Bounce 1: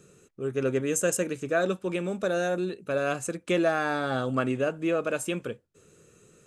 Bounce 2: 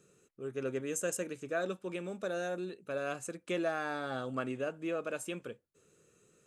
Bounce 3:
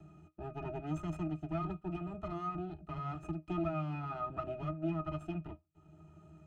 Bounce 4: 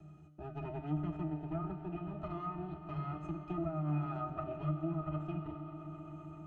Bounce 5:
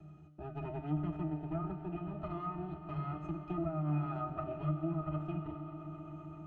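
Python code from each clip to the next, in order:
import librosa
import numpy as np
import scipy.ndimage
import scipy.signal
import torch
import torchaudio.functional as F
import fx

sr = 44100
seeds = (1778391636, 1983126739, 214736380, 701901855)

y1 = fx.low_shelf(x, sr, hz=140.0, db=-6.5)
y1 = y1 * librosa.db_to_amplitude(-8.5)
y2 = fx.lower_of_two(y1, sr, delay_ms=0.96)
y2 = fx.octave_resonator(y2, sr, note='D#', decay_s=0.12)
y2 = fx.band_squash(y2, sr, depth_pct=40)
y2 = y2 * librosa.db_to_amplitude(12.5)
y3 = fx.env_lowpass_down(y2, sr, base_hz=1100.0, full_db=-31.5)
y3 = fx.comb_fb(y3, sr, f0_hz=150.0, decay_s=1.2, harmonics='all', damping=0.0, mix_pct=80)
y3 = fx.echo_swell(y3, sr, ms=130, loudest=5, wet_db=-18.0)
y3 = y3 * librosa.db_to_amplitude(11.0)
y4 = fx.air_absorb(y3, sr, metres=67.0)
y4 = y4 * librosa.db_to_amplitude(1.0)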